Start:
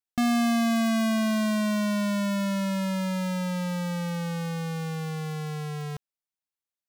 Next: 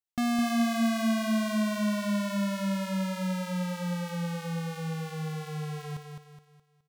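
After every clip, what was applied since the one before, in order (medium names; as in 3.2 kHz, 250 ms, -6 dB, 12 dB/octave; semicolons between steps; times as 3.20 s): feedback delay 210 ms, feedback 39%, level -5.5 dB; trim -4 dB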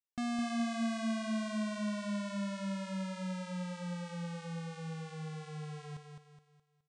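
steep low-pass 9.4 kHz 72 dB/octave; trim -8 dB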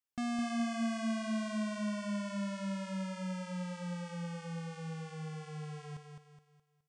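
band-stop 3.9 kHz, Q 8.8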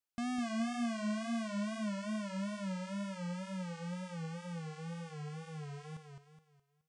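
wow and flutter 97 cents; trim -1.5 dB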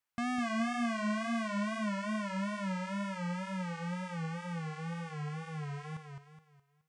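graphic EQ 125/1000/2000 Hz +6/+7/+7 dB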